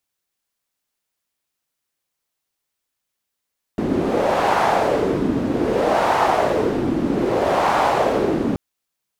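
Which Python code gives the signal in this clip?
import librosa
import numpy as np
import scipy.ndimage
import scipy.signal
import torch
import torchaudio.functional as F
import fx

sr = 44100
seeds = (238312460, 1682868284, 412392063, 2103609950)

y = fx.wind(sr, seeds[0], length_s=4.78, low_hz=270.0, high_hz=840.0, q=2.3, gusts=3, swing_db=3.5)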